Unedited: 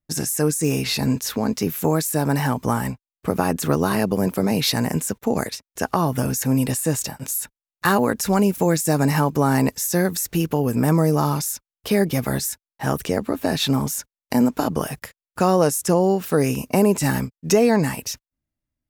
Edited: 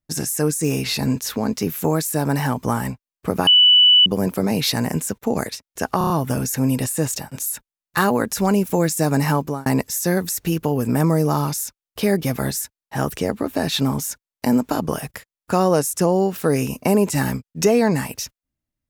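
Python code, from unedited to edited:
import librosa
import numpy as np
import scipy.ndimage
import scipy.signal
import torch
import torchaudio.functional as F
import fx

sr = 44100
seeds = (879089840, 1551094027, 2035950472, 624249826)

y = fx.edit(x, sr, fx.bleep(start_s=3.47, length_s=0.59, hz=2970.0, db=-8.5),
    fx.stutter(start_s=5.98, slice_s=0.03, count=5),
    fx.fade_out_span(start_s=9.26, length_s=0.28), tone=tone)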